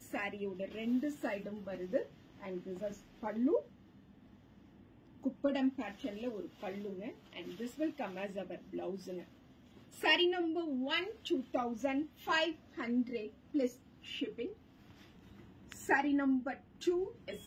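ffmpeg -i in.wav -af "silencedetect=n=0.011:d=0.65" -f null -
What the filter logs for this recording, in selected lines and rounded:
silence_start: 3.60
silence_end: 5.25 | silence_duration: 1.65
silence_start: 9.20
silence_end: 10.02 | silence_duration: 0.82
silence_start: 14.48
silence_end: 15.72 | silence_duration: 1.25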